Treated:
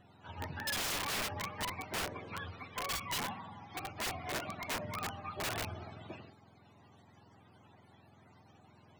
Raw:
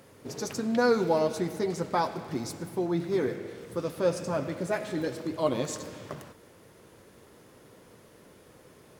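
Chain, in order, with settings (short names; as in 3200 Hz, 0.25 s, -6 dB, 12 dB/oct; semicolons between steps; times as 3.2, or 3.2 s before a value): spectrum mirrored in octaves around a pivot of 620 Hz; wrapped overs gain 26.5 dB; ending taper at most 160 dB/s; gain -4.5 dB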